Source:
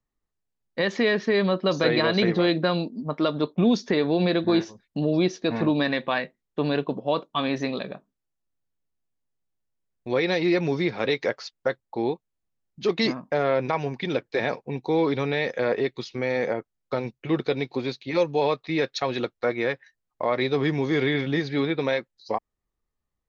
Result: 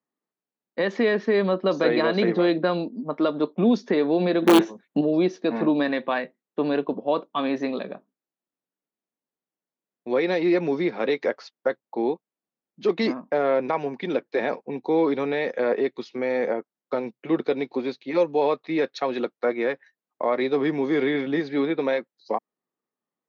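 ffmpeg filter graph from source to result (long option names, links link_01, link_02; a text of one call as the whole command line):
ffmpeg -i in.wav -filter_complex "[0:a]asettb=1/sr,asplit=3[link_01][link_02][link_03];[link_01]atrim=end=4.424[link_04];[link_02]atrim=start=4.42:end=5.01,asetpts=PTS-STARTPTS,afade=type=in:duration=0.004:curve=qsin,afade=type=out:start_time=0.586:duration=0.004:curve=qsin,aeval=exprs='(mod(4.73*val(0)+1,2)-1)/4.73':channel_layout=same,equalizer=frequency=4900:width_type=o:width=0.28:gain=-13,acontrast=58[link_05];[link_03]atrim=start=5.006[link_06];[link_04][link_05]acrossfade=duration=0.004:curve1=hsin:curve2=qsin[link_07];[link_07][link_06]acrossfade=duration=0.004:curve1=qsin:curve2=hsin,highpass=frequency=200:width=0.5412,highpass=frequency=200:width=1.3066,highshelf=frequency=2600:gain=-11.5,volume=2dB" out.wav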